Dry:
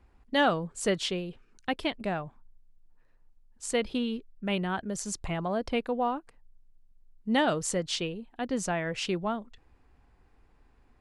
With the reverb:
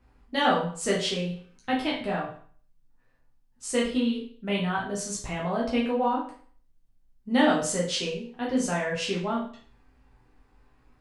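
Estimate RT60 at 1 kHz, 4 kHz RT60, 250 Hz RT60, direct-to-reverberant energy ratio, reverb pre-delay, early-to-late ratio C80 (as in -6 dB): 0.50 s, 0.45 s, 0.45 s, -4.5 dB, 8 ms, 10.0 dB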